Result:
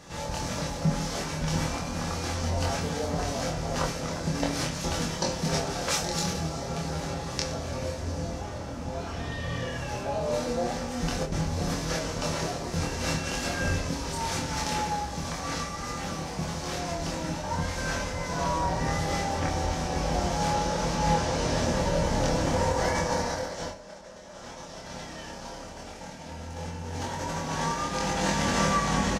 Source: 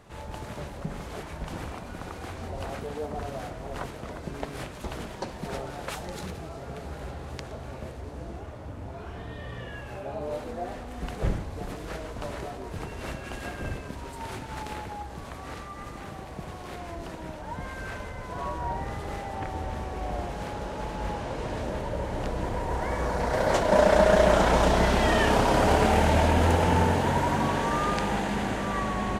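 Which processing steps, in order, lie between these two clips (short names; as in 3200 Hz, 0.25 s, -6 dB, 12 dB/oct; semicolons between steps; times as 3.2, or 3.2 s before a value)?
bell 5700 Hz +14.5 dB 0.9 oct; negative-ratio compressor -29 dBFS, ratio -0.5; doubler 25 ms -2.5 dB; on a send: reverb RT60 0.45 s, pre-delay 3 ms, DRR 2.5 dB; on the sum: gain -2 dB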